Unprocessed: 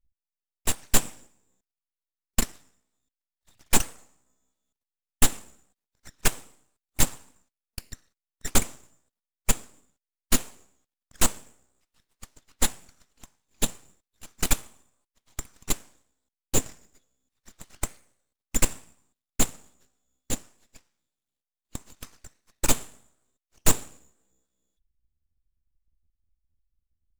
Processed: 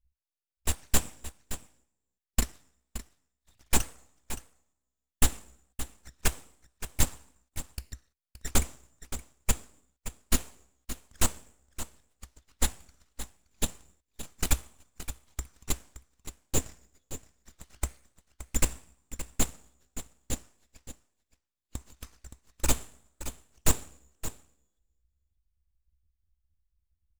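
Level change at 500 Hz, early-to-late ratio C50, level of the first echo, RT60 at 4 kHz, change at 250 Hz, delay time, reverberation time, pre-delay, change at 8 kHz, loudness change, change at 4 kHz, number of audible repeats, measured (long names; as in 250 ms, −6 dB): −4.0 dB, no reverb audible, −12.5 dB, no reverb audible, −4.0 dB, 571 ms, no reverb audible, no reverb audible, −4.5 dB, −5.5 dB, −4.5 dB, 1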